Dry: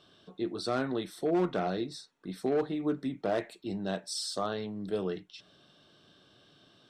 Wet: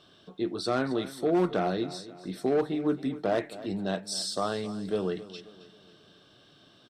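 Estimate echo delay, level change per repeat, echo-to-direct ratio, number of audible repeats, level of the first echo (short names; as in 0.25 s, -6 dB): 0.267 s, -7.0 dB, -15.0 dB, 3, -16.0 dB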